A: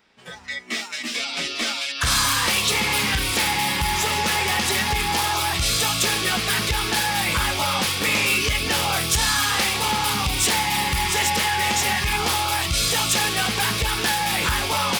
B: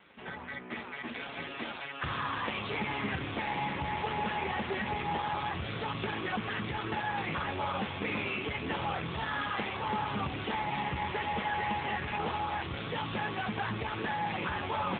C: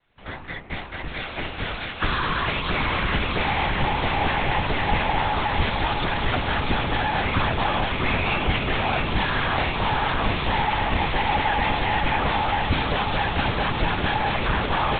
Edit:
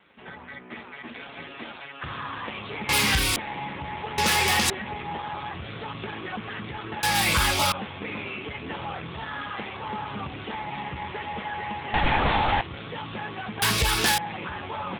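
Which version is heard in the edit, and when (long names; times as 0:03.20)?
B
0:02.89–0:03.36: punch in from A
0:04.18–0:04.70: punch in from A
0:07.03–0:07.72: punch in from A
0:11.94–0:12.61: punch in from C
0:13.62–0:14.18: punch in from A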